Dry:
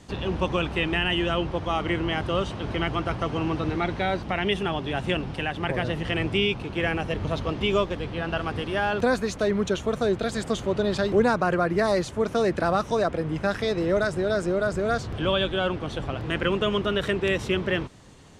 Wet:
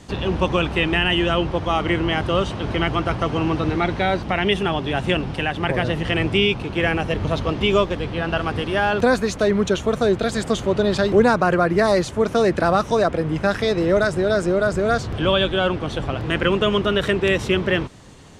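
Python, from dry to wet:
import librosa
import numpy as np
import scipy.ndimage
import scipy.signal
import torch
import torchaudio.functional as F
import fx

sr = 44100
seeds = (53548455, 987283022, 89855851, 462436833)

y = x * 10.0 ** (5.5 / 20.0)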